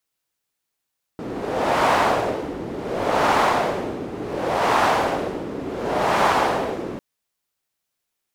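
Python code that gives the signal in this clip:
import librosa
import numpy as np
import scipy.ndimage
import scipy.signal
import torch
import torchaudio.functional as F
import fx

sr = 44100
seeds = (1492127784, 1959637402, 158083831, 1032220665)

y = fx.wind(sr, seeds[0], length_s=5.8, low_hz=330.0, high_hz=900.0, q=1.5, gusts=4, swing_db=13)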